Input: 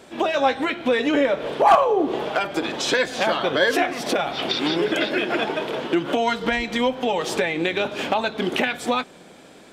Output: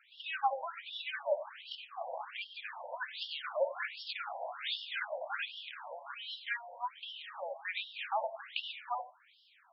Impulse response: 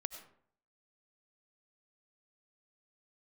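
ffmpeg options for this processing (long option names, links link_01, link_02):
-filter_complex "[0:a]asettb=1/sr,asplit=3[link_01][link_02][link_03];[link_01]atrim=end=4.394[link_04];[link_02]atrim=start=4.39:end=5.69,asetpts=PTS-STARTPTS,afade=type=in:duration=0.004:curve=qsin,afade=type=out:start_time=1.296:duration=0.004:curve=qsin,asplit=2[link_05][link_06];[link_06]adelay=19,volume=-7dB[link_07];[link_05][link_07]amix=inputs=2:normalize=0,atrim=end_sample=57330[link_08];[link_03]atrim=start=5.686[link_09];[link_04][link_08]acrossfade=duration=0.004:curve1=hsin:curve2=qsin[link_10];[link_10][link_09]acrossfade=duration=0.004:curve1=qsin:curve2=hsin[link_11];[1:a]atrim=start_sample=2205,atrim=end_sample=4410[link_12];[link_11][link_12]afir=irnorm=-1:irlink=0,afftfilt=real='re*between(b*sr/1024,690*pow(4000/690,0.5+0.5*sin(2*PI*1.3*pts/sr))/1.41,690*pow(4000/690,0.5+0.5*sin(2*PI*1.3*pts/sr))*1.41)':imag='im*between(b*sr/1024,690*pow(4000/690,0.5+0.5*sin(2*PI*1.3*pts/sr))/1.41,690*pow(4000/690,0.5+0.5*sin(2*PI*1.3*pts/sr))*1.41)':win_size=1024:overlap=0.75,volume=-7dB"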